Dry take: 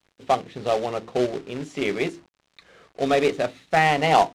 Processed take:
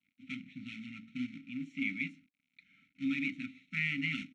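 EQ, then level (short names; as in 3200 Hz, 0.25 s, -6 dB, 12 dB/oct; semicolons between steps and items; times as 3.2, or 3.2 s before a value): vowel filter u; brick-wall FIR band-stop 270–1300 Hz; Butterworth band-stop 4800 Hz, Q 7.3; +7.0 dB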